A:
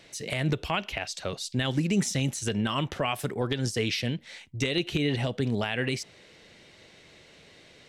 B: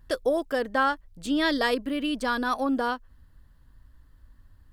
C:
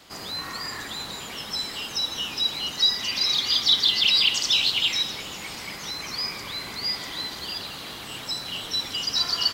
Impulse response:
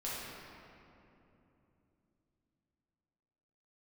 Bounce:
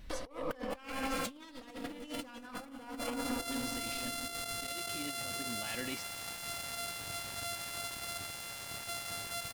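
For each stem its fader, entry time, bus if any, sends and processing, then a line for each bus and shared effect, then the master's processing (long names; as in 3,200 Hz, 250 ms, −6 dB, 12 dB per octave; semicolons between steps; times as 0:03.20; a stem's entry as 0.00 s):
−17.5 dB, 0.00 s, no send, comb filter 3.5 ms, depth 68%
−3.5 dB, 0.00 s, send −4.5 dB, lower of the sound and its delayed copy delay 4 ms; every ending faded ahead of time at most 210 dB per second
−13.0 dB, 0.60 s, no send, samples sorted by size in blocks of 64 samples; graphic EQ with 15 bands 100 Hz +9 dB, 630 Hz −7 dB, 4,000 Hz +6 dB, 10,000 Hz +9 dB; bit-depth reduction 6 bits, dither none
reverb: on, RT60 3.0 s, pre-delay 5 ms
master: compressor whose output falls as the input rises −36 dBFS, ratio −0.5; brickwall limiter −25 dBFS, peak gain reduction 10 dB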